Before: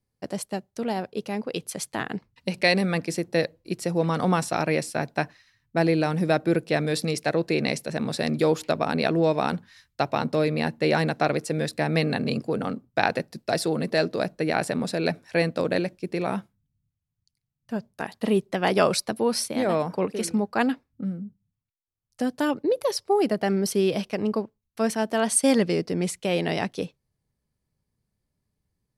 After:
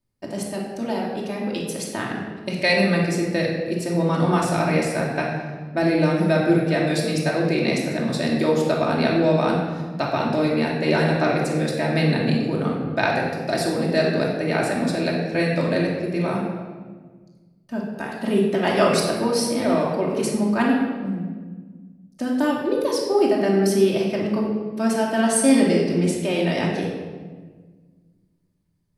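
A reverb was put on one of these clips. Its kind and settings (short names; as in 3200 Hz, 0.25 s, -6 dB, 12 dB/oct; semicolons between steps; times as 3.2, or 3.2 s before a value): shoebox room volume 1400 m³, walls mixed, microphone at 2.7 m; gain -2 dB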